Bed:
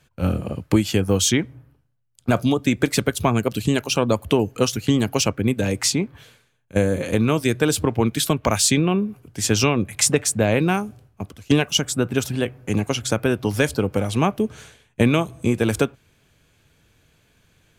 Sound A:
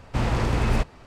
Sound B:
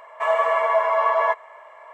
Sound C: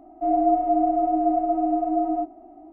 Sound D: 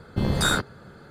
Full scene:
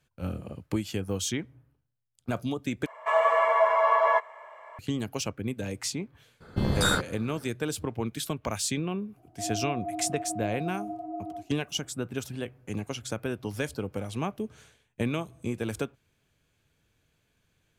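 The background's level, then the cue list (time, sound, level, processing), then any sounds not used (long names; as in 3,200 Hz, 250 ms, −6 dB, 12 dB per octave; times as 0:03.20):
bed −12 dB
0:02.86: overwrite with B −2.5 dB
0:06.40: mix in D −2.5 dB, fades 0.02 s
0:09.17: mix in C −14 dB + Butterworth high-pass 160 Hz
not used: A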